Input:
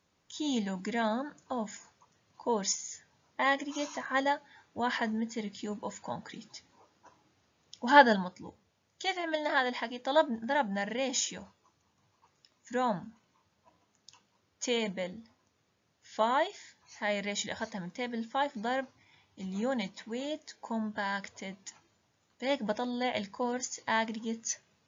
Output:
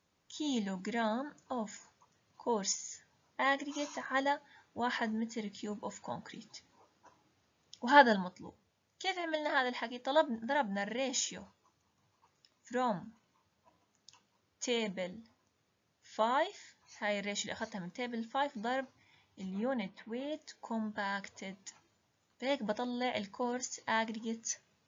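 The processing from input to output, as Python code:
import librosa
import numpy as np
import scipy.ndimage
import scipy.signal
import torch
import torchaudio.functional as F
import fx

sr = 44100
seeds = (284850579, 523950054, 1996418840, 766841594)

y = fx.lowpass(x, sr, hz=2800.0, slope=12, at=(19.5, 20.31), fade=0.02)
y = F.gain(torch.from_numpy(y), -3.0).numpy()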